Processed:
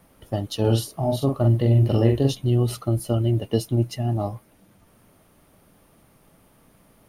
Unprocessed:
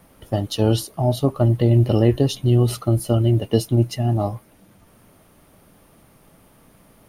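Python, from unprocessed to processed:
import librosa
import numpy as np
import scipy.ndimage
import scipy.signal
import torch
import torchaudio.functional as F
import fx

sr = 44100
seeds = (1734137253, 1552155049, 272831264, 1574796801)

y = fx.doubler(x, sr, ms=44.0, db=-4.0, at=(0.6, 2.34))
y = y * librosa.db_to_amplitude(-4.0)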